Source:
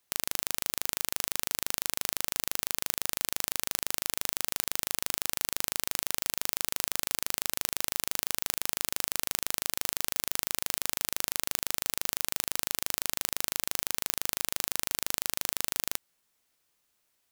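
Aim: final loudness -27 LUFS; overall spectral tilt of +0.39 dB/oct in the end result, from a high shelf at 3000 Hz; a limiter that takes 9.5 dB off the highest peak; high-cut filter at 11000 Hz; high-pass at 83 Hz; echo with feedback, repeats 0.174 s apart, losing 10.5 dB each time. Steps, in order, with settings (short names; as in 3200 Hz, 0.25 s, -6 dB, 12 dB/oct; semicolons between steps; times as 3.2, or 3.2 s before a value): HPF 83 Hz; LPF 11000 Hz; high shelf 3000 Hz +8 dB; limiter -10 dBFS; feedback echo 0.174 s, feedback 30%, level -10.5 dB; gain +9.5 dB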